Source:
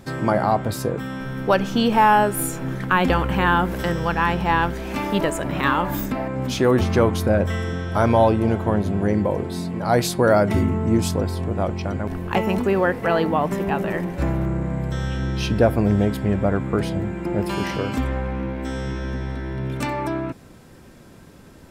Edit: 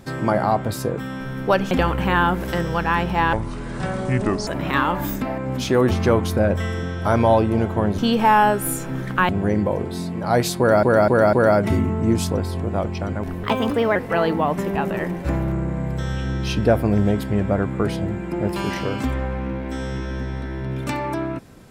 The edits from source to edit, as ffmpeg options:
-filter_complex "[0:a]asplit=11[s0][s1][s2][s3][s4][s5][s6][s7][s8][s9][s10];[s0]atrim=end=1.712[s11];[s1]atrim=start=3.018:end=4.644[s12];[s2]atrim=start=4.64:end=5.37,asetpts=PTS-STARTPTS,asetrate=28224,aresample=44100[s13];[s3]atrim=start=5.366:end=8.882[s14];[s4]atrim=start=1.708:end=3.022[s15];[s5]atrim=start=8.878:end=10.422[s16];[s6]atrim=start=10.168:end=10.422[s17];[s7]atrim=start=10.168:end=10.422[s18];[s8]atrim=start=10.168:end=12.274[s19];[s9]atrim=start=12.27:end=12.89,asetpts=PTS-STARTPTS,asetrate=52038,aresample=44100,atrim=end_sample=23171,asetpts=PTS-STARTPTS[s20];[s10]atrim=start=12.886[s21];[s11][s12]acrossfade=d=0.004:c1=hsin:c2=hsin[s22];[s22][s13]acrossfade=d=0.004:c1=hsin:c2=hsin[s23];[s23][s14]acrossfade=d=0.004:c1=hsin:c2=hsin[s24];[s24][s15]acrossfade=d=0.004:c1=hsin:c2=hsin[s25];[s25][s16]acrossfade=d=0.004:c1=hsin:c2=hsin[s26];[s26][s17]acrossfade=d=0.004:c1=hsin:c2=hsin[s27];[s27][s18]acrossfade=d=0.004:c1=hsin:c2=hsin[s28];[s28][s19]acrossfade=d=0.004:c1=hsin:c2=hsin[s29];[s29][s20]acrossfade=d=0.004:c1=hsin:c2=hsin[s30];[s30][s21]acrossfade=d=0.004:c1=hsin:c2=hsin"

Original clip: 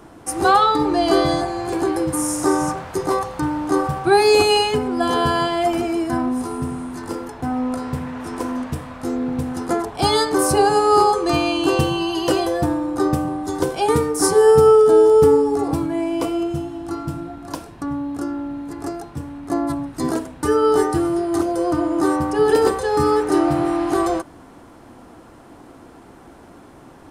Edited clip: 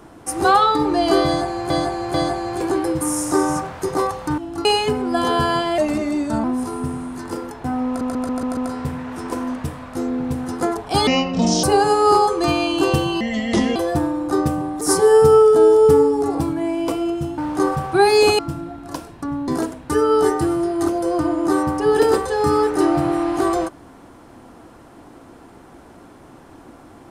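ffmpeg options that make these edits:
-filter_complex "[0:a]asplit=20[s0][s1][s2][s3][s4][s5][s6][s7][s8][s9][s10][s11][s12][s13][s14][s15][s16][s17][s18][s19];[s0]atrim=end=1.702[s20];[s1]atrim=start=1.258:end=1.702[s21];[s2]atrim=start=1.258:end=3.502[s22];[s3]atrim=start=16.708:end=16.982[s23];[s4]atrim=start=4.508:end=5.644[s24];[s5]atrim=start=5.64:end=6.22,asetpts=PTS-STARTPTS,asetrate=38808,aresample=44100[s25];[s6]atrim=start=6.216:end=7.792[s26];[s7]atrim=start=7.648:end=7.792[s27];[s8]atrim=start=7.648:end=7.792[s28];[s9]atrim=start=7.648:end=7.792[s29];[s10]atrim=start=7.648:end=7.792[s30];[s11]atrim=start=7.648:end=10.154[s31];[s12]atrim=start=10.15:end=10.49,asetpts=PTS-STARTPTS,asetrate=26460,aresample=44100[s32];[s13]atrim=start=10.486:end=12.064[s33];[s14]atrim=start=12.06:end=12.43,asetpts=PTS-STARTPTS,asetrate=29547,aresample=44100[s34];[s15]atrim=start=12.426:end=13.482[s35];[s16]atrim=start=14.138:end=16.712[s36];[s17]atrim=start=3.498:end=4.512[s37];[s18]atrim=start=16.978:end=18.072[s38];[s19]atrim=start=20.008[s39];[s20][s21]acrossfade=d=0.004:c1=hsin:c2=hsin[s40];[s40][s22]acrossfade=d=0.004:c1=hsin:c2=hsin[s41];[s41][s23]acrossfade=d=0.004:c1=hsin:c2=hsin[s42];[s42][s24]acrossfade=d=0.004:c1=hsin:c2=hsin[s43];[s43][s25]acrossfade=d=0.004:c1=hsin:c2=hsin[s44];[s44][s26]acrossfade=d=0.004:c1=hsin:c2=hsin[s45];[s45][s27]acrossfade=d=0.004:c1=hsin:c2=hsin[s46];[s46][s28]acrossfade=d=0.004:c1=hsin:c2=hsin[s47];[s47][s29]acrossfade=d=0.004:c1=hsin:c2=hsin[s48];[s48][s30]acrossfade=d=0.004:c1=hsin:c2=hsin[s49];[s49][s31]acrossfade=d=0.004:c1=hsin:c2=hsin[s50];[s50][s32]acrossfade=d=0.004:c1=hsin:c2=hsin[s51];[s51][s33]acrossfade=d=0.004:c1=hsin:c2=hsin[s52];[s52][s34]acrossfade=d=0.004:c1=hsin:c2=hsin[s53];[s53][s35]acrossfade=d=0.004:c1=hsin:c2=hsin[s54];[s54][s36]acrossfade=d=0.004:c1=hsin:c2=hsin[s55];[s55][s37]acrossfade=d=0.004:c1=hsin:c2=hsin[s56];[s56][s38]acrossfade=d=0.004:c1=hsin:c2=hsin[s57];[s57][s39]acrossfade=d=0.004:c1=hsin:c2=hsin"

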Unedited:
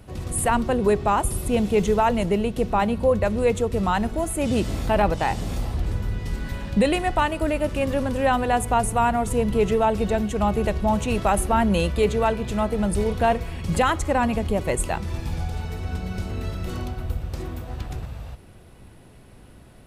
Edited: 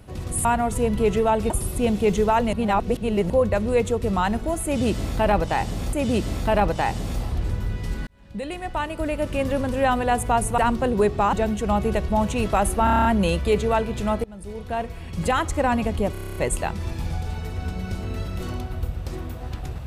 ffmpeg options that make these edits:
-filter_complex "[0:a]asplit=25[s0][s1][s2][s3][s4][s5][s6][s7][s8][s9][s10][s11][s12][s13][s14][s15][s16][s17][s18][s19][s20][s21][s22][s23][s24];[s0]atrim=end=0.452[s25];[s1]atrim=start=8.998:end=10.052[s26];[s2]atrim=start=1.198:end=2.232[s27];[s3]atrim=start=2.228:end=3.002,asetpts=PTS-STARTPTS,areverse[s28];[s4]atrim=start=2.998:end=5.632[s29];[s5]atrim=start=4.348:end=6.49,asetpts=PTS-STARTPTS,afade=t=out:st=2.138:d=0.004:c=hsin[s30];[s6]atrim=start=6.49:end=9.002,asetpts=PTS-STARTPTS,afade=t=in:d=1.35[s31];[s7]atrim=start=0.448:end=1.202[s32];[s8]atrim=start=10.048:end=11.592[s33];[s9]atrim=start=11.558:end=11.592[s34];[s10]atrim=start=11.558:end=11.592[s35];[s11]atrim=start=11.558:end=11.592[s36];[s12]atrim=start=11.558:end=11.592[s37];[s13]atrim=start=11.558:end=11.592[s38];[s14]atrim=start=11.558:end=11.592[s39];[s15]atrim=start=11.558:end=12.75,asetpts=PTS-STARTPTS,afade=t=out:st=1.188:d=0.004:c=hsin:silence=0.0668344[s40];[s16]atrim=start=12.75:end=14.662,asetpts=PTS-STARTPTS,afade=t=in:d=1.33:silence=0.0668344[s41];[s17]atrim=start=14.628:end=14.662[s42];[s18]atrim=start=14.628:end=14.662[s43];[s19]atrim=start=14.628:end=14.662[s44];[s20]atrim=start=14.628:end=14.662[s45];[s21]atrim=start=14.628:end=14.662[s46];[s22]atrim=start=14.628:end=14.662[s47];[s23]atrim=start=14.628:end=14.662[s48];[s24]atrim=start=14.628[s49];[s25][s26]acrossfade=d=0.004:c1=hsin:c2=hsin[s50];[s50][s27]acrossfade=d=0.004:c1=hsin:c2=hsin[s51];[s51][s28]acrossfade=d=0.004:c1=hsin:c2=hsin[s52];[s52][s29]acrossfade=d=0.004:c1=hsin:c2=hsin[s53];[s30][s31]concat=n=2:v=0:a=1[s54];[s53][s54]acrossfade=d=0.004:c1=hsin:c2=hsin[s55];[s55][s32]acrossfade=d=0.004:c1=hsin:c2=hsin[s56];[s56][s33]acrossfade=d=0.004:c1=hsin:c2=hsin[s57];[s57][s34]acrossfade=d=0.004:c1=hsin:c2=hsin[s58];[s58][s35]acrossfade=d=0.004:c1=hsin:c2=hsin[s59];[s59][s36]acrossfade=d=0.004:c1=hsin:c2=hsin[s60];[s60][s37]acrossfade=d=0.004:c1=hsin:c2=hsin[s61];[s61][s38]acrossfade=d=0.004:c1=hsin:c2=hsin[s62];[s62][s39]acrossfade=d=0.004:c1=hsin:c2=hsin[s63];[s40][s41]concat=n=2:v=0:a=1[s64];[s63][s64]acrossfade=d=0.004:c1=hsin:c2=hsin[s65];[s65][s42]acrossfade=d=0.004:c1=hsin:c2=hsin[s66];[s66][s43]acrossfade=d=0.004:c1=hsin:c2=hsin[s67];[s67][s44]acrossfade=d=0.004:c1=hsin:c2=hsin[s68];[s68][s45]acrossfade=d=0.004:c1=hsin:c2=hsin[s69];[s69][s46]acrossfade=d=0.004:c1=hsin:c2=hsin[s70];[s70][s47]acrossfade=d=0.004:c1=hsin:c2=hsin[s71];[s71][s48]acrossfade=d=0.004:c1=hsin:c2=hsin[s72];[s72][s49]acrossfade=d=0.004:c1=hsin:c2=hsin"

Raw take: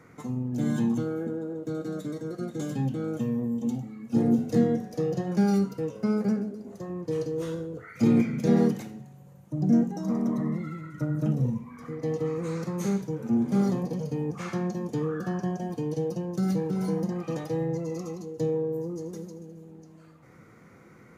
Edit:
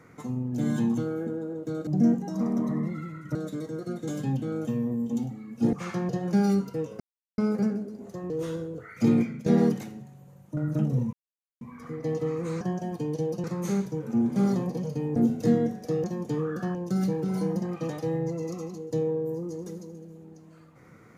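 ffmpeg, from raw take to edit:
-filter_complex "[0:a]asplit=15[s0][s1][s2][s3][s4][s5][s6][s7][s8][s9][s10][s11][s12][s13][s14];[s0]atrim=end=1.872[s15];[s1]atrim=start=9.558:end=11.042[s16];[s2]atrim=start=1.868:end=4.252[s17];[s3]atrim=start=14.318:end=14.682[s18];[s4]atrim=start=5.128:end=6.04,asetpts=PTS-STARTPTS,afade=t=out:st=0.908:d=0.004:c=hsin,apad=pad_dur=0.38[s19];[s5]atrim=start=6.04:end=6.962,asetpts=PTS-STARTPTS,afade=t=in:d=0.004:c=hsin[s20];[s6]atrim=start=7.288:end=8.45,asetpts=PTS-STARTPTS,afade=t=out:st=0.792:d=0.37:silence=0.251189[s21];[s7]atrim=start=8.45:end=9.562,asetpts=PTS-STARTPTS,afade=t=in:d=0.004:c=hsin:silence=0.251189[s22];[s8]atrim=start=11.038:end=11.6,asetpts=PTS-STARTPTS,afade=t=out:st=0.558:d=0.004:c=hsin,apad=pad_dur=0.48[s23];[s9]atrim=start=11.6:end=12.602,asetpts=PTS-STARTPTS,afade=t=in:d=0.004:c=hsin[s24];[s10]atrim=start=15.388:end=16.222[s25];[s11]atrim=start=12.598:end=14.322[s26];[s12]atrim=start=4.248:end=5.132[s27];[s13]atrim=start=14.678:end=15.392[s28];[s14]atrim=start=16.218[s29];[s15][s16]acrossfade=d=0.004:c1=hsin:c2=hsin[s30];[s30][s17]acrossfade=d=0.004:c1=hsin:c2=hsin[s31];[s31][s18]acrossfade=d=0.004:c1=hsin:c2=hsin[s32];[s19][s20]concat=n=2:v=0:a=1[s33];[s32][s33]acrossfade=d=0.004:c1=hsin:c2=hsin[s34];[s21][s22]concat=n=2:v=0:a=1[s35];[s34][s35]acrossfade=d=0.004:c1=hsin:c2=hsin[s36];[s23][s24]concat=n=2:v=0:a=1[s37];[s36][s37]acrossfade=d=0.004:c1=hsin:c2=hsin[s38];[s38][s25]acrossfade=d=0.004:c1=hsin:c2=hsin[s39];[s39][s26]acrossfade=d=0.004:c1=hsin:c2=hsin[s40];[s40][s27]acrossfade=d=0.004:c1=hsin:c2=hsin[s41];[s41][s28]acrossfade=d=0.004:c1=hsin:c2=hsin[s42];[s42][s29]acrossfade=d=0.004:c1=hsin:c2=hsin"

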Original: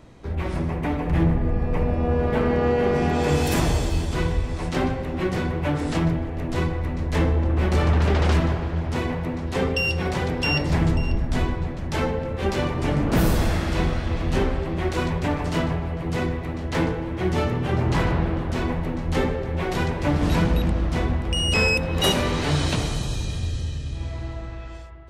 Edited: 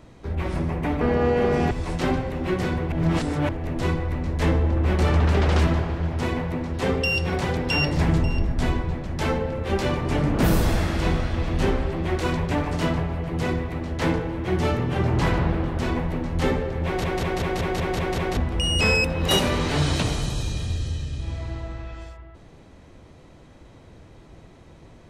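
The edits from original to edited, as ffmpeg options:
-filter_complex "[0:a]asplit=13[s0][s1][s2][s3][s4][s5][s6][s7][s8][s9][s10][s11][s12];[s0]atrim=end=1.012[s13];[s1]atrim=start=2.428:end=3.132[s14];[s2]atrim=start=4.438:end=5.652[s15];[s3]atrim=start=5.648:end=6.222,asetpts=PTS-STARTPTS,areverse[s16];[s4]atrim=start=6.218:end=19.772[s17];[s5]atrim=start=19.578:end=19.772[s18];[s6]atrim=start=19.578:end=19.772[s19];[s7]atrim=start=19.578:end=19.772[s20];[s8]atrim=start=19.578:end=19.772[s21];[s9]atrim=start=19.578:end=19.772[s22];[s10]atrim=start=19.578:end=19.772[s23];[s11]atrim=start=19.578:end=19.772[s24];[s12]atrim=start=21.098[s25];[s13][s14]acrossfade=d=0.004:c1=hsin:c2=hsin[s26];[s26][s15]acrossfade=d=0.004:c1=hsin:c2=hsin[s27];[s27][s16]acrossfade=d=0.004:c1=hsin:c2=hsin[s28];[s28][s17]acrossfade=d=0.004:c1=hsin:c2=hsin[s29];[s29][s18]acrossfade=d=0.004:c1=hsin:c2=hsin[s30];[s30][s19]acrossfade=d=0.004:c1=hsin:c2=hsin[s31];[s31][s20]acrossfade=d=0.004:c1=hsin:c2=hsin[s32];[s32][s21]acrossfade=d=0.004:c1=hsin:c2=hsin[s33];[s33][s22]acrossfade=d=0.004:c1=hsin:c2=hsin[s34];[s34][s23]acrossfade=d=0.004:c1=hsin:c2=hsin[s35];[s35][s24]acrossfade=d=0.004:c1=hsin:c2=hsin[s36];[s36][s25]acrossfade=d=0.004:c1=hsin:c2=hsin"

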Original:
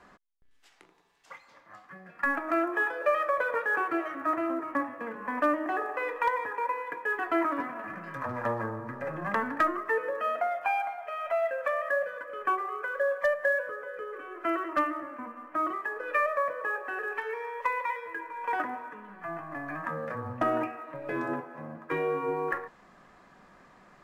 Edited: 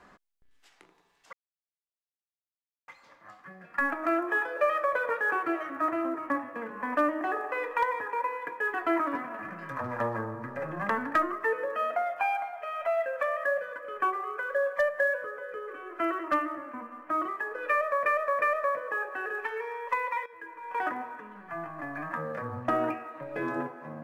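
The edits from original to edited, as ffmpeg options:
-filter_complex "[0:a]asplit=5[s0][s1][s2][s3][s4];[s0]atrim=end=1.33,asetpts=PTS-STARTPTS,afade=t=out:st=1.326:d=0.004:c=hsin,apad=pad_dur=1.55[s5];[s1]atrim=start=1.33:end=16.512,asetpts=PTS-STARTPTS,afade=t=in:d=0.004:c=hsin[s6];[s2]atrim=start=16.148:end=16.512[s7];[s3]atrim=start=16.148:end=17.99,asetpts=PTS-STARTPTS,afade=t=out:st=1.838:d=0.004:c=hsin:silence=0.237137[s8];[s4]atrim=start=17.99,asetpts=PTS-STARTPTS,afade=t=in:d=0.61:silence=0.237137[s9];[s5][s6]concat=n=2:v=0:a=1[s10];[s10][s7]acrossfade=d=0.004:c1=hsin:c2=hsin[s11];[s8][s9]concat=n=2:v=0:a=1[s12];[s11][s12]acrossfade=d=0.004:c1=hsin:c2=hsin"

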